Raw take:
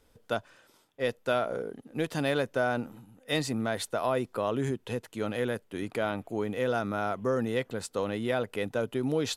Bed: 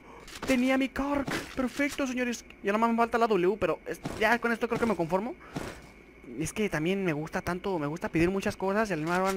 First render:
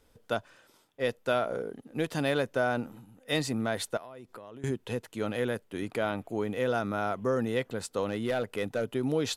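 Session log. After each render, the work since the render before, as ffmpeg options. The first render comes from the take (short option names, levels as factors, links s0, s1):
-filter_complex "[0:a]asettb=1/sr,asplit=3[s0][s1][s2];[s0]atrim=end=3.974[s3];[s1]atrim=start=3.97:end=4.64,asetpts=PTS-STARTPTS,afade=t=in:d=0.004:c=qsin,afade=t=out:st=0.666:d=0.004:c=qsin,acompressor=threshold=0.00891:ratio=16:attack=3.2:release=140:knee=1:detection=peak[s4];[s2]atrim=start=4.636[s5];[s3][s4]acrossfade=d=0.004:c1=hsin:c2=qsin[s6];[s6][s5]acrossfade=d=0.004:c1=qsin:c2=hsin,asettb=1/sr,asplit=3[s7][s8][s9];[s7]atrim=end=8.084[s10];[s8]atrim=start=8.08:end=8.93,asetpts=PTS-STARTPTS,afade=t=in:d=0.004:c=qsin,afade=t=out:st=0.846:d=0.004:c=qsin,asoftclip=type=hard:threshold=0.0708[s11];[s9]atrim=start=8.926[s12];[s10][s11]acrossfade=d=0.004:c1=hsin:c2=qsin[s13];[s13][s12]acrossfade=d=0.004:c1=qsin:c2=hsin"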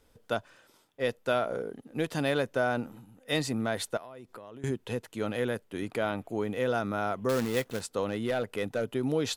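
-filter_complex "[0:a]asettb=1/sr,asplit=3[s0][s1][s2];[s0]atrim=end=7.294[s3];[s1]atrim=start=7.29:end=7.81,asetpts=PTS-STARTPTS,afade=t=in:d=0.004:c=qsin,afade=t=out:st=0.516:d=0.004:c=qsin,acrusher=bits=2:mode=log:mix=0:aa=0.000001[s4];[s2]atrim=start=7.806[s5];[s3][s4]acrossfade=d=0.004:c1=hsin:c2=qsin[s6];[s6][s5]acrossfade=d=0.004:c1=qsin:c2=hsin"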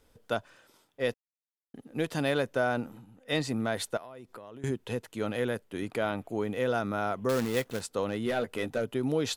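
-filter_complex "[0:a]asettb=1/sr,asplit=3[s0][s1][s2];[s0]atrim=end=2.974[s3];[s1]atrim=start=2.97:end=3.49,asetpts=PTS-STARTPTS,afade=t=in:d=0.004:c=qsin,afade=t=out:st=0.516:d=0.004:c=qsin,highshelf=f=8300:g=-9.5[s4];[s2]atrim=start=3.486[s5];[s3][s4]acrossfade=d=0.004:c1=hsin:c2=qsin[s6];[s6][s5]acrossfade=d=0.004:c1=qsin:c2=hsin,asettb=1/sr,asplit=3[s7][s8][s9];[s7]atrim=end=8.254[s10];[s8]atrim=start=8.25:end=8.78,asetpts=PTS-STARTPTS,afade=t=in:d=0.004:c=qsin,afade=t=out:st=0.526:d=0.004:c=qsin,asplit=2[s11][s12];[s12]adelay=13,volume=0.501[s13];[s11][s13]amix=inputs=2:normalize=0,atrim=end_sample=23373[s14];[s9]atrim=start=8.776[s15];[s10][s14]acrossfade=d=0.004:c1=hsin:c2=qsin[s16];[s16][s15]acrossfade=d=0.004:c1=qsin:c2=hsin,asplit=3[s17][s18][s19];[s17]atrim=end=1.14,asetpts=PTS-STARTPTS,afade=t=out:st=1.136:d=0.004:c=hsin[s20];[s18]atrim=start=1.14:end=1.74,asetpts=PTS-STARTPTS,volume=0[s21];[s19]atrim=start=1.74,asetpts=PTS-STARTPTS,afade=t=in:d=0.004:c=hsin[s22];[s20][s21][s22]concat=n=3:v=0:a=1"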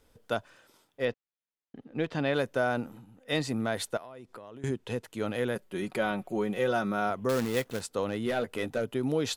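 -filter_complex "[0:a]asettb=1/sr,asplit=3[s0][s1][s2];[s0]atrim=end=1.054[s3];[s1]atrim=start=1.05:end=2.34,asetpts=PTS-STARTPTS,afade=t=in:d=0.004:c=qsin,afade=t=out:st=1.286:d=0.004:c=qsin,lowpass=3600[s4];[s2]atrim=start=2.336[s5];[s3][s4]acrossfade=d=0.004:c1=hsin:c2=qsin[s6];[s6][s5]acrossfade=d=0.004:c1=qsin:c2=hsin,asettb=1/sr,asplit=3[s7][s8][s9];[s7]atrim=end=4.034[s10];[s8]atrim=start=4.03:end=5.04,asetpts=PTS-STARTPTS,afade=t=in:d=0.004:c=qsin,afade=t=out:st=1.006:d=0.004:c=qsin,lowpass=11000[s11];[s9]atrim=start=5.036[s12];[s10][s11]acrossfade=d=0.004:c1=hsin:c2=qsin[s13];[s13][s12]acrossfade=d=0.004:c1=qsin:c2=hsin,asettb=1/sr,asplit=3[s14][s15][s16];[s14]atrim=end=5.554[s17];[s15]atrim=start=5.55:end=7.1,asetpts=PTS-STARTPTS,afade=t=in:d=0.004:c=qsin,afade=t=out:st=1.546:d=0.004:c=qsin,aecho=1:1:5.4:0.65,atrim=end_sample=68355[s18];[s16]atrim=start=7.096[s19];[s17][s18]acrossfade=d=0.004:c1=hsin:c2=qsin[s20];[s20][s19]acrossfade=d=0.004:c1=qsin:c2=hsin"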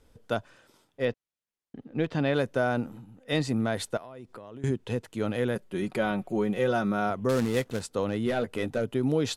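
-af "lowpass=12000,lowshelf=f=320:g=6"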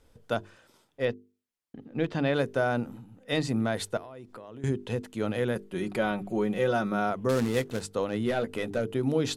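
-af "bandreject=f=50:t=h:w=6,bandreject=f=100:t=h:w=6,bandreject=f=150:t=h:w=6,bandreject=f=200:t=h:w=6,bandreject=f=250:t=h:w=6,bandreject=f=300:t=h:w=6,bandreject=f=350:t=h:w=6,bandreject=f=400:t=h:w=6,bandreject=f=450:t=h:w=6"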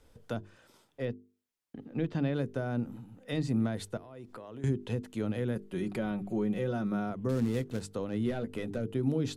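-filter_complex "[0:a]acrossover=split=330[s0][s1];[s1]acompressor=threshold=0.00708:ratio=2.5[s2];[s0][s2]amix=inputs=2:normalize=0"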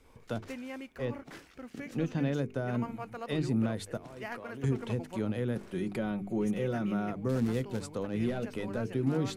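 -filter_complex "[1:a]volume=0.158[s0];[0:a][s0]amix=inputs=2:normalize=0"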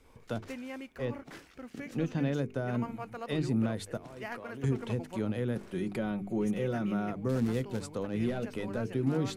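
-af anull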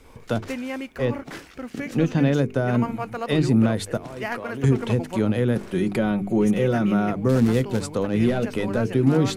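-af "volume=3.55"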